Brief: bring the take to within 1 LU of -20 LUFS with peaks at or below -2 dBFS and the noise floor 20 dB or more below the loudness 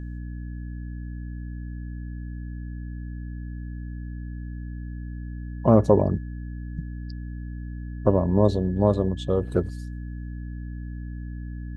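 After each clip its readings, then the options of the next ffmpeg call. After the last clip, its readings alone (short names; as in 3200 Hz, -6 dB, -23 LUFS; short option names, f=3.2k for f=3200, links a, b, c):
hum 60 Hz; harmonics up to 300 Hz; hum level -31 dBFS; steady tone 1700 Hz; tone level -54 dBFS; loudness -28.0 LUFS; peak -3.0 dBFS; loudness target -20.0 LUFS
-> -af "bandreject=f=60:t=h:w=4,bandreject=f=120:t=h:w=4,bandreject=f=180:t=h:w=4,bandreject=f=240:t=h:w=4,bandreject=f=300:t=h:w=4"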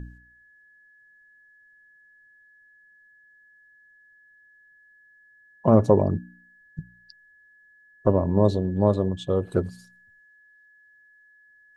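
hum none; steady tone 1700 Hz; tone level -54 dBFS
-> -af "bandreject=f=1.7k:w=30"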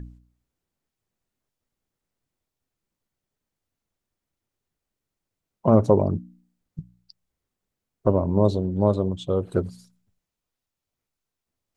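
steady tone none; loudness -22.5 LUFS; peak -3.5 dBFS; loudness target -20.0 LUFS
-> -af "volume=2.5dB,alimiter=limit=-2dB:level=0:latency=1"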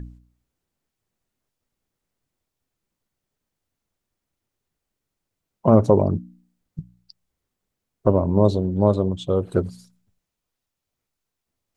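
loudness -20.5 LUFS; peak -2.0 dBFS; noise floor -83 dBFS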